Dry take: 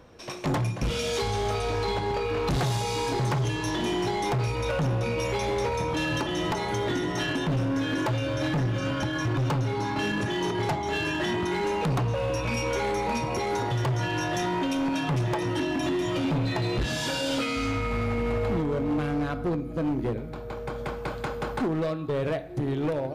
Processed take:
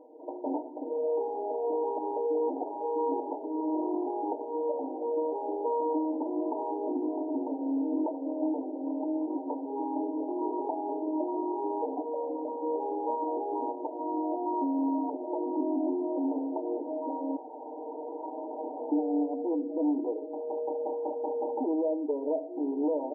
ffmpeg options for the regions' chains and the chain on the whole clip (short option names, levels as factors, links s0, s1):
-filter_complex "[0:a]asettb=1/sr,asplit=3[s0][s1][s2];[s0]atrim=end=17.364[s3];[s1]atrim=start=17.36:end=18.92,asetpts=PTS-STARTPTS,afade=t=in:d=0.004:c=qsin,afade=t=out:st=1.556:d=0.004:c=qsin,highpass=f=390:w=0.5412,highpass=f=390:w=1.3066,aeval=exprs='(mod(29.9*val(0)+1,2)-1)/29.9':c=same[s4];[s2]atrim=start=18.916[s5];[s3][s4]acrossfade=d=0.004:c1=hsin:c2=qsin[s6];[s6][s5]acrossfade=d=0.004:c1=qsin:c2=hsin,acompressor=threshold=0.0398:ratio=6,aecho=1:1:6.5:0.75,afftfilt=real='re*between(b*sr/4096,240,1000)':imag='im*between(b*sr/4096,240,1000)':win_size=4096:overlap=0.75"